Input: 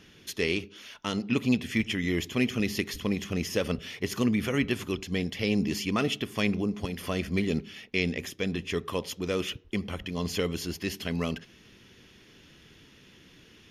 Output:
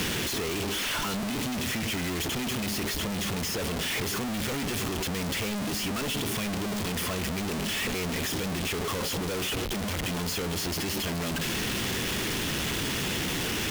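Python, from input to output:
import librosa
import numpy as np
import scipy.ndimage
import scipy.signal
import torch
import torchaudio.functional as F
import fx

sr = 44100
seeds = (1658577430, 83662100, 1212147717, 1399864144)

y = np.sign(x) * np.sqrt(np.mean(np.square(x)))
y = fx.band_squash(y, sr, depth_pct=70)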